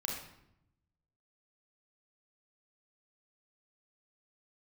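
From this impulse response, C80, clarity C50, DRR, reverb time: 6.0 dB, 2.5 dB, -1.0 dB, 0.80 s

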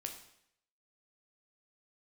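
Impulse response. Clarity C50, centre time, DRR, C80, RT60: 8.0 dB, 19 ms, 3.0 dB, 11.0 dB, 0.70 s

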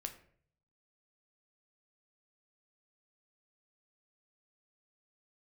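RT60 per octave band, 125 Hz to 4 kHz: 0.95 s, 0.65 s, 0.60 s, 0.50 s, 0.50 s, 0.35 s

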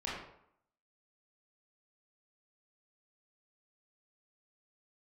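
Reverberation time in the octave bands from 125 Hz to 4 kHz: 0.65 s, 0.70 s, 0.70 s, 0.75 s, 0.60 s, 0.45 s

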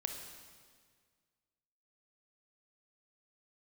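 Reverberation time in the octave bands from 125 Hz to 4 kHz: 2.1 s, 1.9 s, 1.8 s, 1.7 s, 1.7 s, 1.6 s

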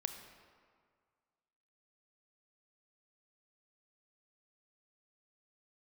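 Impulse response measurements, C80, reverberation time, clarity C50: 8.5 dB, 1.9 s, 7.5 dB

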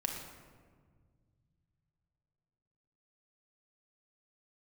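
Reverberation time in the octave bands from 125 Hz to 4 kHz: 3.9 s, 2.8 s, 1.9 s, 1.5 s, 1.2 s, 0.90 s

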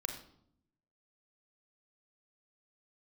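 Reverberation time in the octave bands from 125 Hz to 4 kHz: 1.1 s, 1.1 s, 0.75 s, 0.65 s, 0.50 s, 0.50 s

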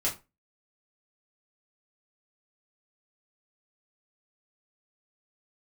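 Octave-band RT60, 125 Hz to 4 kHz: 0.30 s, 0.30 s, 0.25 s, 0.25 s, 0.20 s, 0.20 s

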